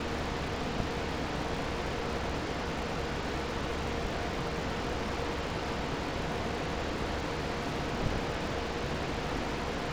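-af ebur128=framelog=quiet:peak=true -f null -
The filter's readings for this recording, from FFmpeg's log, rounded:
Integrated loudness:
  I:         -34.1 LUFS
  Threshold: -44.1 LUFS
Loudness range:
  LRA:         0.3 LU
  Threshold: -54.1 LUFS
  LRA low:   -34.2 LUFS
  LRA high:  -33.9 LUFS
True peak:
  Peak:      -15.1 dBFS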